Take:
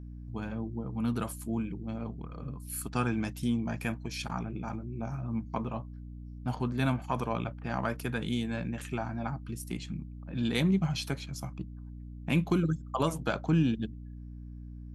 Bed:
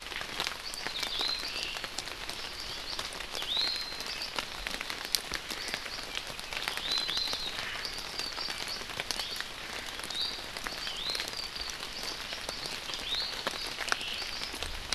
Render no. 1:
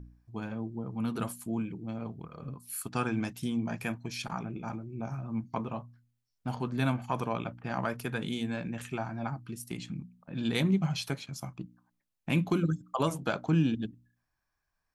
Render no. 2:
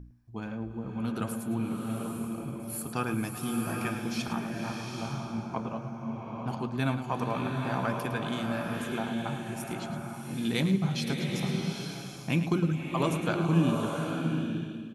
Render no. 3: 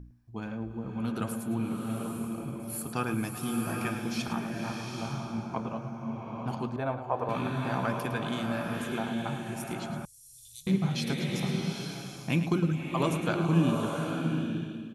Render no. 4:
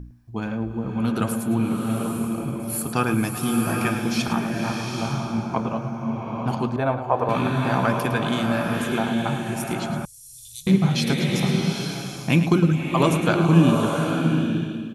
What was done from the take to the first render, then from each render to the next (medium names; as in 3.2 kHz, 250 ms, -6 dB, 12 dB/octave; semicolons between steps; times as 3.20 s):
de-hum 60 Hz, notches 5
delay 108 ms -11 dB; swelling reverb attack 840 ms, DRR 1.5 dB
6.76–7.29 s: FFT filter 110 Hz 0 dB, 170 Hz -17 dB, 550 Hz +7 dB, 3.4 kHz -13 dB, 7.6 kHz -19 dB; 10.05–10.67 s: inverse Chebyshev band-stop 230–1500 Hz, stop band 70 dB
trim +9 dB